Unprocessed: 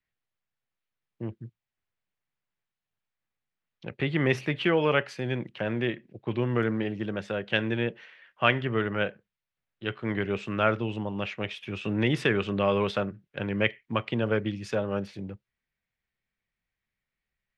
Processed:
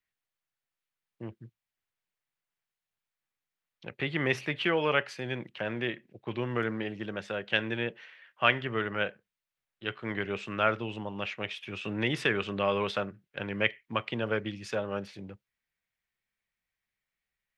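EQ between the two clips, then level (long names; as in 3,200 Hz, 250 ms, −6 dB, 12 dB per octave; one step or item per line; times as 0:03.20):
low-shelf EQ 500 Hz −7.5 dB
0.0 dB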